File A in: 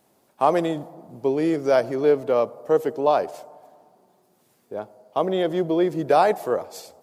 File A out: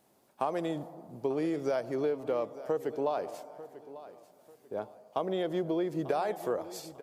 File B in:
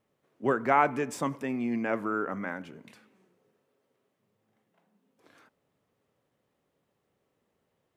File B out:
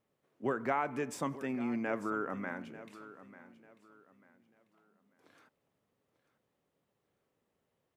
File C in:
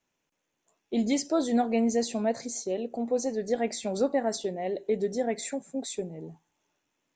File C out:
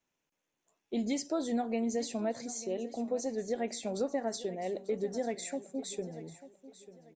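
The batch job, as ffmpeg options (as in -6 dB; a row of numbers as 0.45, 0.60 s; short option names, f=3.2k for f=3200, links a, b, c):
-af "acompressor=threshold=-23dB:ratio=6,aecho=1:1:893|1786|2679:0.158|0.0475|0.0143,volume=-4.5dB"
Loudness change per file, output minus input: -11.0, -7.0, -6.0 LU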